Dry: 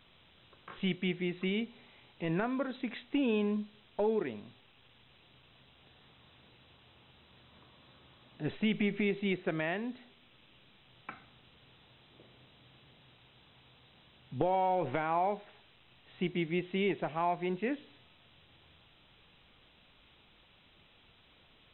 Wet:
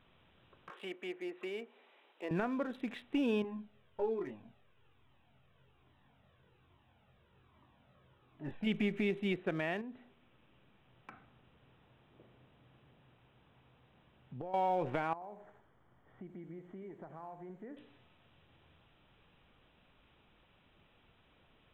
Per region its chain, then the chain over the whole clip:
0:00.70–0:02.31: treble cut that deepens with the level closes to 2,000 Hz, closed at −31 dBFS + high-pass filter 350 Hz 24 dB per octave
0:03.42–0:08.67: low-pass filter 2,900 Hz 6 dB per octave + double-tracking delay 22 ms −4.5 dB + flanger whose copies keep moving one way falling 1.2 Hz
0:09.81–0:14.54: downward compressor 2.5 to 1, threshold −42 dBFS + high-frequency loss of the air 190 metres
0:15.13–0:17.77: downward compressor 4 to 1, threshold −45 dBFS + Savitzky-Golay smoothing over 41 samples + feedback echo at a low word length 84 ms, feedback 35%, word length 10 bits, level −10 dB
whole clip: adaptive Wiener filter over 9 samples; notch filter 2,100 Hz, Q 21; level −2 dB

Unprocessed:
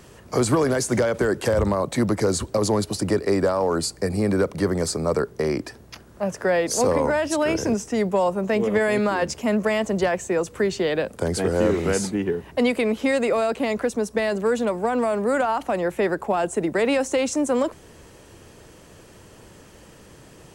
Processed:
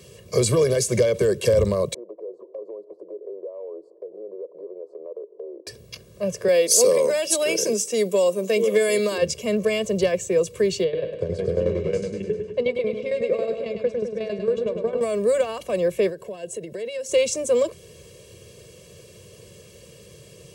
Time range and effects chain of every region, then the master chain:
0:01.94–0:05.67: elliptic band-pass filter 320–920 Hz, stop band 50 dB + downward compressor 3 to 1, threshold −39 dBFS
0:06.48–0:09.18: high-pass filter 210 Hz 24 dB per octave + high-shelf EQ 6,100 Hz +12 dB
0:10.84–0:15.01: head-to-tape spacing loss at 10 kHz 25 dB + shaped tremolo saw down 11 Hz, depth 80% + repeating echo 103 ms, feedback 56%, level −6.5 dB
0:16.09–0:17.09: notch filter 780 Hz, Q 14 + downward compressor 5 to 1, threshold −30 dBFS + notch comb filter 1,200 Hz
whole clip: high-pass filter 100 Hz; flat-topped bell 1,100 Hz −12 dB; comb filter 1.8 ms, depth 99%

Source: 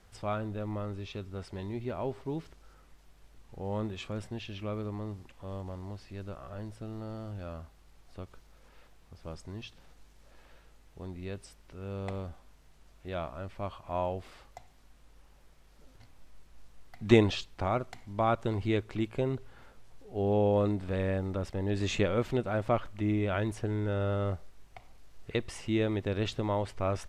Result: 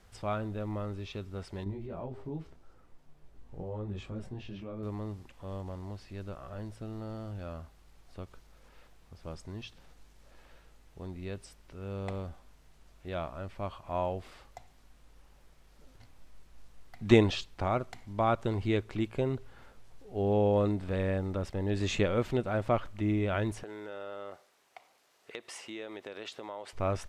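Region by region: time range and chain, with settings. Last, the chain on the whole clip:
0:01.64–0:04.83: downward compressor, threshold −36 dBFS + tilt shelving filter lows +5.5 dB, about 1,300 Hz + micro pitch shift up and down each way 15 cents
0:23.63–0:26.73: high-pass filter 470 Hz + downward compressor 3 to 1, threshold −39 dBFS
whole clip: no processing

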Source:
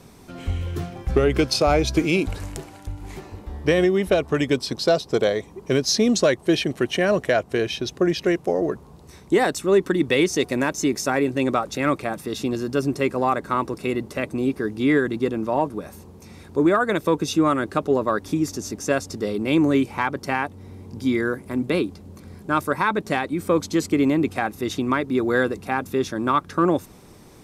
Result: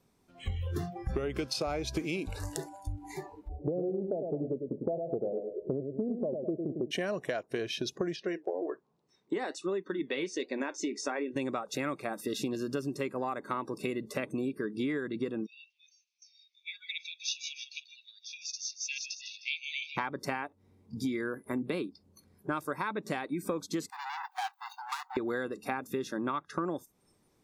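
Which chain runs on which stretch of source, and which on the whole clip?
0:03.48–0:06.91: Butterworth low-pass 770 Hz + repeating echo 102 ms, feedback 34%, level −7 dB
0:08.16–0:11.36: flanger 1.3 Hz, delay 4.4 ms, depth 5.7 ms, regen −70% + band-pass filter 170–6,000 Hz
0:15.46–0:19.97: Chebyshev band-pass filter 2,300–6,200 Hz, order 4 + feedback echo with a swinging delay time 155 ms, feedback 48%, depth 78 cents, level −9.5 dB
0:23.90–0:25.17: running median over 25 samples + hard clipping −27.5 dBFS + linear-phase brick-wall high-pass 720 Hz
whole clip: noise reduction from a noise print of the clip's start 22 dB; parametric band 63 Hz −3.5 dB 1.8 octaves; downward compressor 10 to 1, threshold −30 dBFS

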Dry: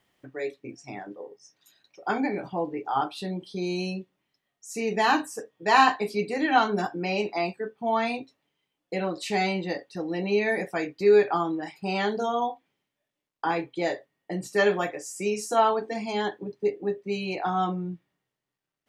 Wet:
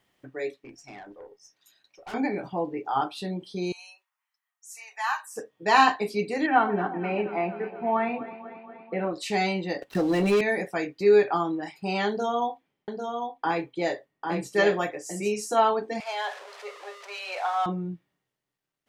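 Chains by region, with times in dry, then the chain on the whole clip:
0:00.57–0:02.14: low-shelf EQ 420 Hz −7 dB + tube saturation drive 37 dB, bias 0.25
0:03.72–0:05.36: Butterworth high-pass 930 Hz + parametric band 3,500 Hz −11.5 dB 1.5 octaves
0:06.46–0:09.13: low-pass filter 2,300 Hz 24 dB per octave + delay that swaps between a low-pass and a high-pass 119 ms, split 940 Hz, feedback 82%, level −13 dB
0:09.82–0:10.41: running median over 9 samples + leveller curve on the samples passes 2 + multiband upward and downward compressor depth 40%
0:12.08–0:15.32: single-tap delay 798 ms −5 dB + one half of a high-frequency compander decoder only
0:16.00–0:17.66: converter with a step at zero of −33.5 dBFS + elliptic high-pass filter 550 Hz, stop band 70 dB + high-frequency loss of the air 59 metres
whole clip: no processing

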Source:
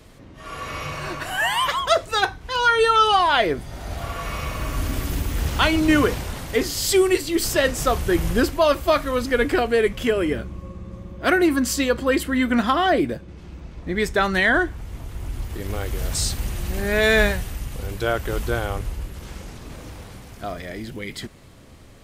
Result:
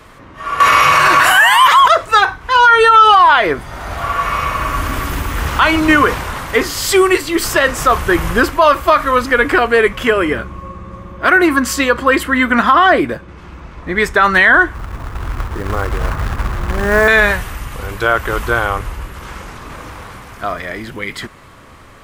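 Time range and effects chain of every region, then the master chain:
0:00.60–0:01.88: spectral tilt +2 dB per octave + envelope flattener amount 100%
0:14.75–0:17.08: low-pass filter 1,700 Hz 24 dB per octave + low-shelf EQ 450 Hz +4 dB + floating-point word with a short mantissa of 2 bits
whole clip: drawn EQ curve 210 Hz 0 dB, 740 Hz +5 dB, 1,100 Hz +14 dB, 4,300 Hz +1 dB; brickwall limiter −4.5 dBFS; level +3.5 dB

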